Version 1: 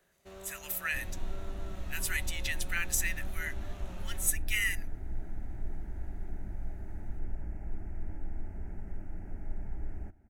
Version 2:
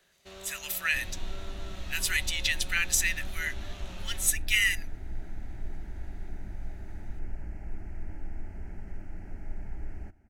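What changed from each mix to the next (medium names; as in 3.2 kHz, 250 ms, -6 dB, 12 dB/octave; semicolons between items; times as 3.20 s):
master: add peaking EQ 3.9 kHz +11 dB 1.9 oct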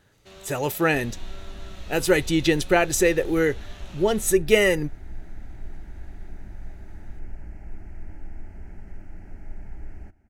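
speech: remove inverse Chebyshev high-pass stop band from 520 Hz, stop band 60 dB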